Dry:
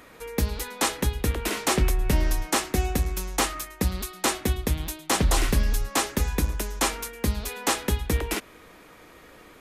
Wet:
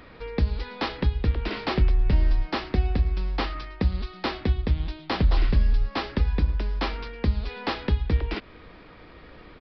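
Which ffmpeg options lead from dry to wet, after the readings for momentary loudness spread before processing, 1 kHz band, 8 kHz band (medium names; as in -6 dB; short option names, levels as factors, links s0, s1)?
5 LU, -3.5 dB, under -30 dB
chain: -af "lowshelf=f=160:g=11,acompressor=threshold=0.0355:ratio=1.5,aresample=11025,aresample=44100"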